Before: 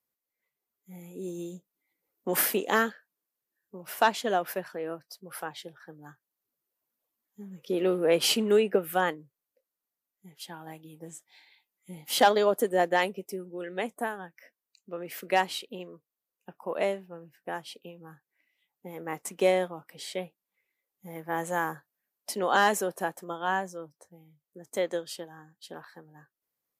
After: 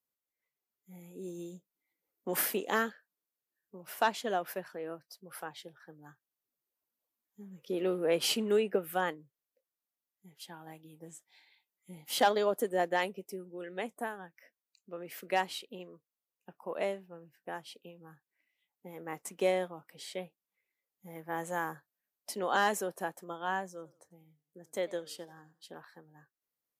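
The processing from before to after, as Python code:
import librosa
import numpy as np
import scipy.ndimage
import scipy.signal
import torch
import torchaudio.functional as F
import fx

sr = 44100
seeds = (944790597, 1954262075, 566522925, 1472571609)

y = fx.echo_warbled(x, sr, ms=88, feedback_pct=39, rate_hz=2.8, cents=162, wet_db=-21.5, at=(23.66, 25.67))
y = F.gain(torch.from_numpy(y), -5.5).numpy()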